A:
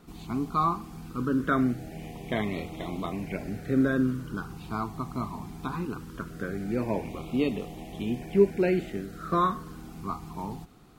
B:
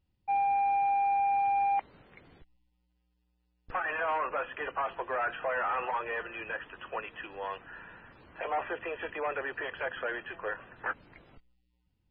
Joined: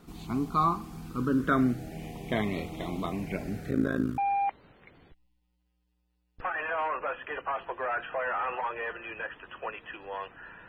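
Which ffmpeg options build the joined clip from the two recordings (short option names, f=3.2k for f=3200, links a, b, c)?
-filter_complex "[0:a]asplit=3[a][b][c];[a]afade=t=out:st=3.69:d=0.02[d];[b]tremolo=f=54:d=0.919,afade=t=in:st=3.69:d=0.02,afade=t=out:st=4.18:d=0.02[e];[c]afade=t=in:st=4.18:d=0.02[f];[d][e][f]amix=inputs=3:normalize=0,apad=whole_dur=10.68,atrim=end=10.68,atrim=end=4.182[g];[1:a]atrim=start=1.478:end=7.98[h];[g][h]acrossfade=d=0.004:c1=hsin:c2=hsin"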